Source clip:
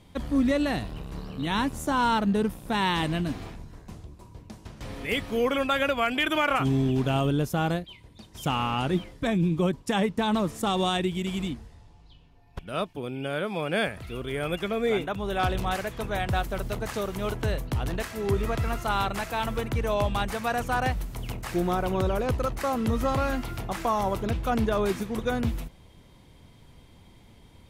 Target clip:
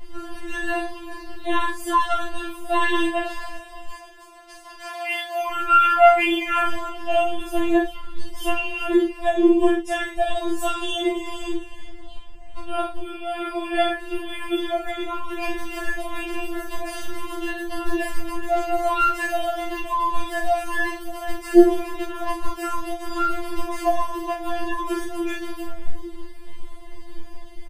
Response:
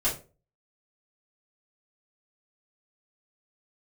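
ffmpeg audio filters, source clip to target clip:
-filter_complex "[0:a]asettb=1/sr,asplit=3[link_01][link_02][link_03];[link_01]atrim=end=3.034[link_04];[link_02]atrim=start=3.03:end=5.5,asetpts=PTS-STARTPTS,afade=type=in:duration=0.004:curve=qsin,afade=type=out:start_time=2.466:duration=0.004:curve=qsin,highpass=frequency=520:width=0.5412,highpass=frequency=520:width=1.3066[link_05];[link_03]atrim=start=5.496[link_06];[link_04][link_05]acrossfade=duration=0.004:curve1=hsin:curve2=qsin[link_07];[link_07][link_06]acrossfade=duration=0.004:curve1=qsin:curve2=hsin,acompressor=threshold=-43dB:ratio=1.5,asplit=6[link_08][link_09][link_10][link_11][link_12][link_13];[link_09]adelay=382,afreqshift=-75,volume=-16dB[link_14];[link_10]adelay=764,afreqshift=-150,volume=-21.5dB[link_15];[link_11]adelay=1146,afreqshift=-225,volume=-27dB[link_16];[link_12]adelay=1528,afreqshift=-300,volume=-32.5dB[link_17];[link_13]adelay=1910,afreqshift=-375,volume=-38.1dB[link_18];[link_08][link_14][link_15][link_16][link_17][link_18]amix=inputs=6:normalize=0,agate=range=-7dB:threshold=-31dB:ratio=16:detection=peak,asplit=2[link_19][link_20];[link_20]adelay=39,volume=-6dB[link_21];[link_19][link_21]amix=inputs=2:normalize=0[link_22];[1:a]atrim=start_sample=2205,atrim=end_sample=4410[link_23];[link_22][link_23]afir=irnorm=-1:irlink=0,alimiter=level_in=18dB:limit=-1dB:release=50:level=0:latency=1,afftfilt=real='re*4*eq(mod(b,16),0)':imag='im*4*eq(mod(b,16),0)':win_size=2048:overlap=0.75,volume=-8.5dB"

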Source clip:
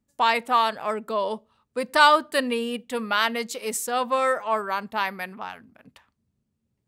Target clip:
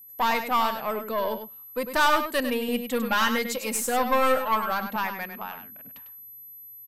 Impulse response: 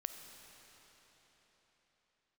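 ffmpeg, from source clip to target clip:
-filter_complex "[0:a]asettb=1/sr,asplit=3[link_01][link_02][link_03];[link_01]atrim=end=2.684[link_04];[link_02]atrim=start=2.68:end=4.96,asetpts=PTS-STARTPTS,afade=type=in:duration=0.004:curve=qsin,afade=type=out:start_time=2.276:duration=0.004:curve=qsin,aecho=1:1:3.7:0.99,atrim=end_sample=100548[link_05];[link_03]atrim=start=4.956[link_06];[link_04][link_05]acrossfade=duration=0.004:curve1=hsin:curve2=qsin[link_07];[link_07][link_06]acrossfade=duration=0.004:curve1=qsin:curve2=hsin,aeval=exprs='(tanh(6.31*val(0)+0.4)-tanh(0.4))/6.31':channel_layout=same,aeval=exprs='val(0)+0.00562*sin(2*PI*12000*n/s)':channel_layout=same,aecho=1:1:100:0.376"

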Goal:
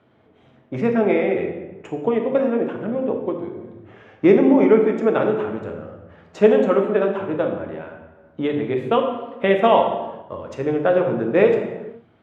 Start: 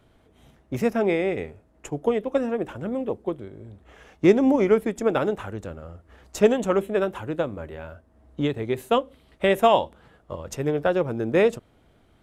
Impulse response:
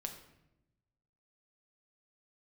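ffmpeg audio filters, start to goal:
-filter_complex "[0:a]highpass=160,lowpass=2700[link_01];[1:a]atrim=start_sample=2205,afade=type=out:start_time=0.39:duration=0.01,atrim=end_sample=17640,asetrate=28224,aresample=44100[link_02];[link_01][link_02]afir=irnorm=-1:irlink=0,volume=3.5dB"

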